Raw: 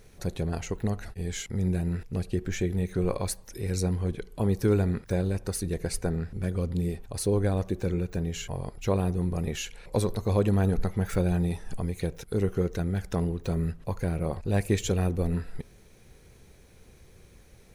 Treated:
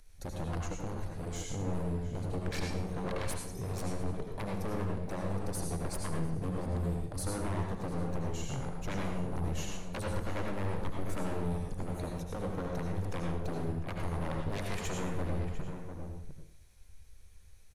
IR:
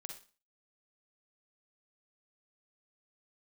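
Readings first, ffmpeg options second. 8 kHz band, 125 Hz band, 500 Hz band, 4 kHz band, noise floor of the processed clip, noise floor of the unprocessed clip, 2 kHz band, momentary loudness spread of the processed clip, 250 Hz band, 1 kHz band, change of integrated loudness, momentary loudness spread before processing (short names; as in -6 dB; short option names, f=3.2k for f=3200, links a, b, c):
-6.0 dB, -8.0 dB, -8.5 dB, -5.5 dB, -52 dBFS, -54 dBFS, -3.5 dB, 4 LU, -8.0 dB, -1.0 dB, -8.0 dB, 8 LU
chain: -filter_complex "[0:a]afwtdn=0.0158,highshelf=f=3.6k:g=8,acompressor=threshold=-26dB:ratio=4,acrossover=split=330|530|2400[a][b][c][d];[a]flanger=delay=3:depth=4.1:regen=59:speed=0.42:shape=sinusoidal[e];[b]acrusher=bits=3:mix=0:aa=0.000001[f];[e][f][c][d]amix=inputs=4:normalize=0,aeval=exprs='0.0178*(abs(mod(val(0)/0.0178+3,4)-2)-1)':c=same,asplit=2[g][h];[h]adelay=699.7,volume=-8dB,highshelf=f=4k:g=-15.7[i];[g][i]amix=inputs=2:normalize=0[j];[1:a]atrim=start_sample=2205,asetrate=24696,aresample=44100[k];[j][k]afir=irnorm=-1:irlink=0,volume=5.5dB"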